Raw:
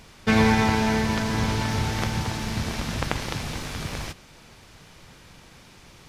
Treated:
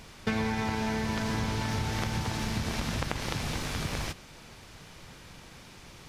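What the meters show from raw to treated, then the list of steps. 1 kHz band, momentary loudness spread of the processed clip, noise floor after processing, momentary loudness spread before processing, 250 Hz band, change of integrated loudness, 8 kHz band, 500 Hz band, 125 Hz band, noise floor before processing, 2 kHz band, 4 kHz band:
-7.0 dB, 19 LU, -51 dBFS, 13 LU, -7.5 dB, -7.0 dB, -4.5 dB, -7.5 dB, -6.0 dB, -51 dBFS, -7.0 dB, -5.0 dB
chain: compression 6:1, threshold -27 dBFS, peak gain reduction 12 dB

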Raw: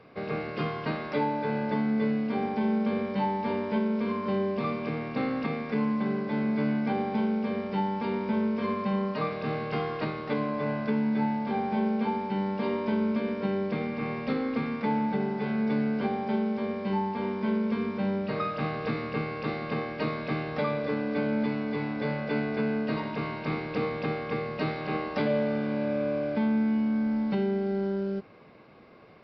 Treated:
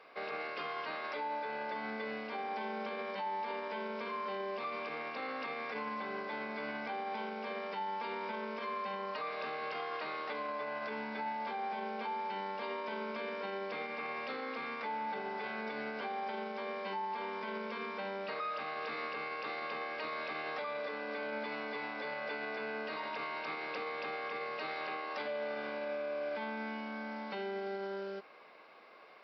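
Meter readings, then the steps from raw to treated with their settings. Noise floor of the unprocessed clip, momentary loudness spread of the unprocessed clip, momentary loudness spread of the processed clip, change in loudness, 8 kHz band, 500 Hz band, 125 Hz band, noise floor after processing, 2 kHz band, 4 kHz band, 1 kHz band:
-37 dBFS, 5 LU, 2 LU, -9.5 dB, no reading, -9.0 dB, -25.0 dB, -42 dBFS, -2.5 dB, -2.5 dB, -4.0 dB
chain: high-pass 680 Hz 12 dB/octave; peak limiter -32 dBFS, peak gain reduction 10 dB; trim +1 dB

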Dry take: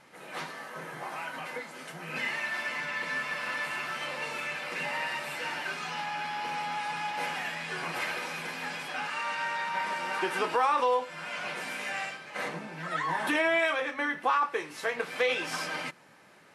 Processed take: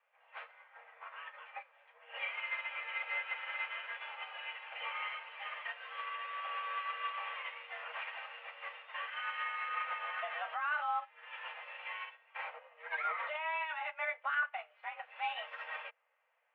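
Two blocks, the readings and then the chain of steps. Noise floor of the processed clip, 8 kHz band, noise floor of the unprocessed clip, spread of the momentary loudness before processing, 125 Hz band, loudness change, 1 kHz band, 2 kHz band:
-69 dBFS, under -35 dB, -48 dBFS, 11 LU, under -40 dB, -8.0 dB, -8.0 dB, -7.0 dB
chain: peak limiter -24.5 dBFS, peak gain reduction 10.5 dB; mistuned SSB +310 Hz 180–2700 Hz; upward expansion 2.5:1, over -44 dBFS; trim +1 dB

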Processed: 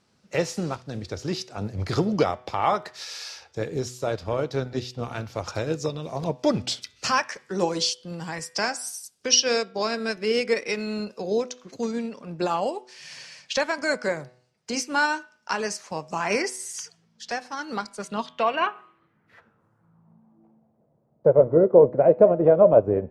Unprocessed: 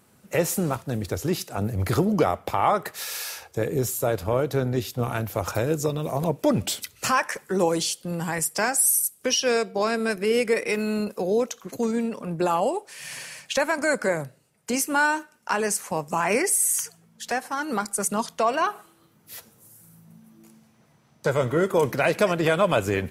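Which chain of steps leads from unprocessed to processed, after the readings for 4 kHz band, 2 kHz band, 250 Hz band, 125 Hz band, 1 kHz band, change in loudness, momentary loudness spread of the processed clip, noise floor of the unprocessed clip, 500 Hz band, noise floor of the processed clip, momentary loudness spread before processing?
+3.0 dB, -2.5 dB, -2.0 dB, -3.0 dB, -2.0 dB, 0.0 dB, 16 LU, -60 dBFS, +2.5 dB, -67 dBFS, 9 LU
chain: low-pass sweep 5.1 kHz -> 580 Hz, 17.69–20.87 s; de-hum 124.5 Hz, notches 30; upward expansion 1.5:1, over -31 dBFS; trim +2.5 dB

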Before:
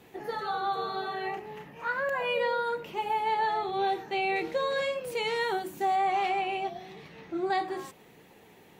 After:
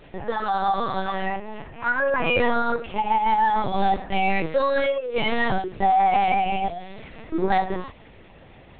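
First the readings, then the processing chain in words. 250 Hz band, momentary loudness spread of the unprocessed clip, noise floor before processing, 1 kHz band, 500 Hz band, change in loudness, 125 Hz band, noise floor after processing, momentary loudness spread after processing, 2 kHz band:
+10.5 dB, 10 LU, -56 dBFS, +7.5 dB, +5.5 dB, +7.0 dB, +15.5 dB, -48 dBFS, 11 LU, +7.0 dB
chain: LPC vocoder at 8 kHz pitch kept; trim +8 dB

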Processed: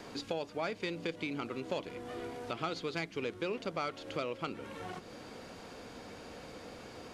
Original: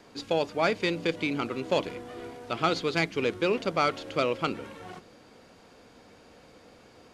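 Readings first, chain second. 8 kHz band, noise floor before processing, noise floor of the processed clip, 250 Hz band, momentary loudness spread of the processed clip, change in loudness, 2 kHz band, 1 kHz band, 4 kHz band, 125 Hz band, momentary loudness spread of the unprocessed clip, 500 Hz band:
-7.0 dB, -55 dBFS, -51 dBFS, -8.5 dB, 12 LU, -11.0 dB, -9.5 dB, -10.0 dB, -9.0 dB, -8.5 dB, 15 LU, -9.5 dB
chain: compression 2.5:1, threshold -48 dBFS, peak gain reduction 18 dB; trim +6 dB

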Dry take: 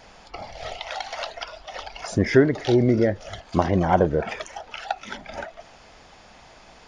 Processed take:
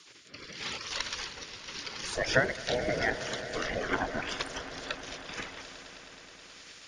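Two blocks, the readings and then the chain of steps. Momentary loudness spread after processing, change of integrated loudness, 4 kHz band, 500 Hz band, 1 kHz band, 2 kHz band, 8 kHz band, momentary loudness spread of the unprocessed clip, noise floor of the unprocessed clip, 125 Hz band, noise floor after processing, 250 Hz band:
19 LU, -9.5 dB, +1.0 dB, -11.0 dB, -9.5 dB, 0.0 dB, +2.5 dB, 18 LU, -50 dBFS, -16.0 dB, -53 dBFS, -16.5 dB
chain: spectral gate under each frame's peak -15 dB weak; rotary cabinet horn 0.85 Hz; echo with a slow build-up 106 ms, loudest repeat 5, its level -18 dB; trim +6.5 dB

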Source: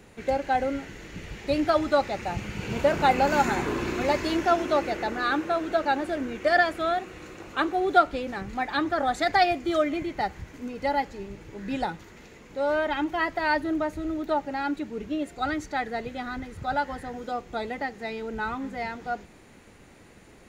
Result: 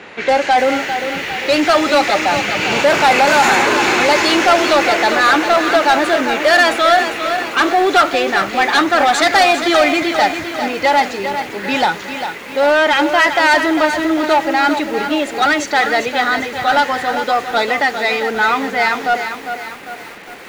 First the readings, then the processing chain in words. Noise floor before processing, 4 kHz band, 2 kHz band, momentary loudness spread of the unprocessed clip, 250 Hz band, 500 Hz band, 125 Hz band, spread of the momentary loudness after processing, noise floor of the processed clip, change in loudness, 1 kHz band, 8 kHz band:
-52 dBFS, +18.5 dB, +16.5 dB, 12 LU, +10.0 dB, +11.5 dB, +3.0 dB, 9 LU, -31 dBFS, +13.0 dB, +13.0 dB, +20.0 dB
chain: treble shelf 2.3 kHz +9 dB; overdrive pedal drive 25 dB, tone 3.2 kHz, clips at -4 dBFS; bass shelf 66 Hz -11.5 dB; level-controlled noise filter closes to 2.8 kHz, open at -10.5 dBFS; bit-crushed delay 400 ms, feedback 55%, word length 6-bit, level -8 dB; trim +1 dB

